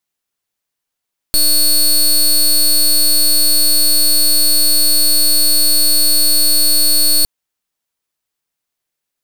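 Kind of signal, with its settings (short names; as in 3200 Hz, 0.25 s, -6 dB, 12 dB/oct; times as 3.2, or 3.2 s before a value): pulse 4380 Hz, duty 17% -10.5 dBFS 5.91 s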